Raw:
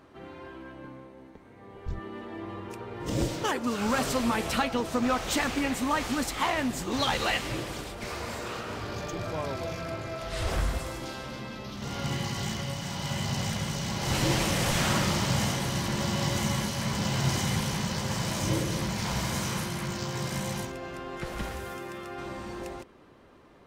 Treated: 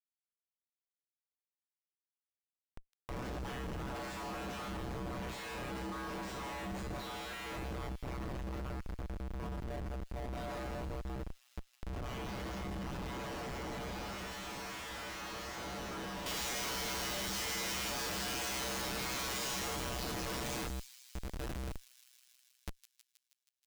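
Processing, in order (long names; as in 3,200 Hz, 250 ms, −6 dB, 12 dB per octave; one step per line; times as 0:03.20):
flanger 0.67 Hz, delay 3 ms, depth 4.4 ms, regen −10%
meter weighting curve ITU-R 468
ring modulation 63 Hz
tuned comb filter 65 Hz, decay 0.82 s, harmonics odd, mix 100%
comparator with hysteresis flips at −47.5 dBFS
high-shelf EQ 2,600 Hz −12 dB, from 0:16.26 +2 dB
delay with a high-pass on its return 159 ms, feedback 65%, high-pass 4,100 Hz, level −8.5 dB
one half of a high-frequency compander encoder only
level +10.5 dB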